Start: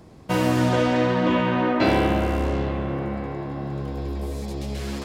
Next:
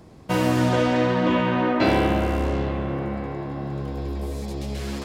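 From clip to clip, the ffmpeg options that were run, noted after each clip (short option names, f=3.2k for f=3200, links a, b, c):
-af anull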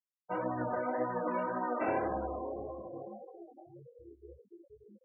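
-filter_complex "[0:a]acrossover=split=410 2600:gain=0.224 1 0.0794[a][b][c];[a][b][c]amix=inputs=3:normalize=0,afftfilt=real='re*gte(hypot(re,im),0.0794)':imag='im*gte(hypot(re,im),0.0794)':win_size=1024:overlap=0.75,flanger=delay=15:depth=6.4:speed=1.8,volume=-5.5dB"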